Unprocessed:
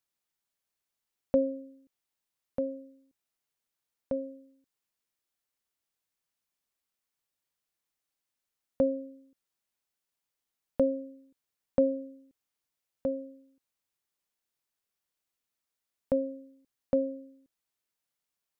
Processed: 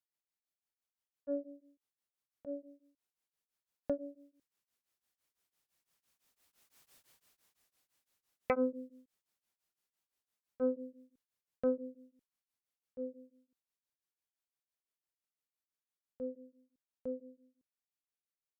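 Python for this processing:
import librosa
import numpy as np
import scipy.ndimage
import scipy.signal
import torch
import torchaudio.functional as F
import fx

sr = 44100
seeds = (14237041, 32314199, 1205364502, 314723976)

y = fx.doppler_pass(x, sr, speed_mps=18, closest_m=3.4, pass_at_s=6.91)
y = fx.cheby_harmonics(y, sr, harmonics=(5,), levels_db=(-7,), full_scale_db=-33.5)
y = y * np.abs(np.cos(np.pi * 5.9 * np.arange(len(y)) / sr))
y = F.gain(torch.from_numpy(y), 13.5).numpy()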